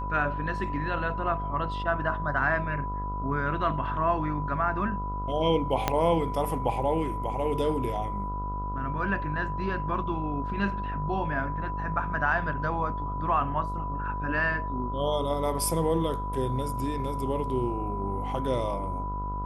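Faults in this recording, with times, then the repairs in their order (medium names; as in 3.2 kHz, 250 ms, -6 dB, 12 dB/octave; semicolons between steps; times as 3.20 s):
buzz 50 Hz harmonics 28 -34 dBFS
whine 990 Hz -33 dBFS
5.88 s: pop -9 dBFS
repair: de-click; de-hum 50 Hz, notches 28; band-stop 990 Hz, Q 30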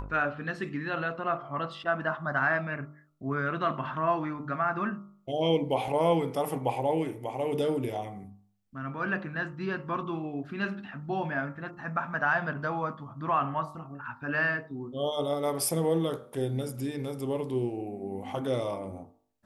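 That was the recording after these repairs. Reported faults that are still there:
5.88 s: pop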